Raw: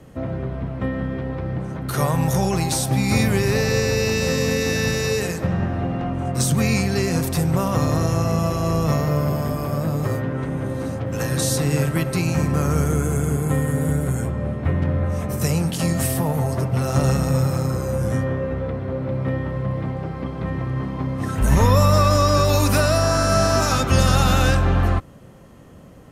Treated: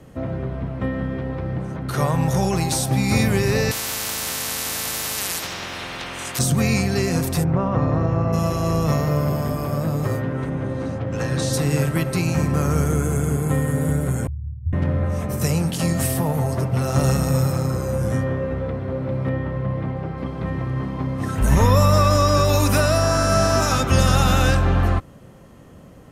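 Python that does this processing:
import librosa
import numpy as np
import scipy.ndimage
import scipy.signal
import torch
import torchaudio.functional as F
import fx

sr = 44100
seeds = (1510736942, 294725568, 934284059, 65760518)

y = fx.high_shelf(x, sr, hz=9700.0, db=-10.5, at=(1.76, 2.37))
y = fx.spectral_comp(y, sr, ratio=10.0, at=(3.71, 6.39))
y = fx.lowpass(y, sr, hz=1800.0, slope=12, at=(7.43, 8.32), fade=0.02)
y = fx.bessel_lowpass(y, sr, hz=5000.0, order=2, at=(10.49, 11.52), fade=0.02)
y = fx.cheby2_bandstop(y, sr, low_hz=330.0, high_hz=8600.0, order=4, stop_db=60, at=(14.27, 14.73))
y = fx.high_shelf(y, sr, hz=7800.0, db=6.0, at=(16.98, 17.52))
y = fx.bass_treble(y, sr, bass_db=0, treble_db=-7, at=(19.29, 20.18))
y = fx.notch(y, sr, hz=4400.0, q=12.0, at=(21.52, 24.49))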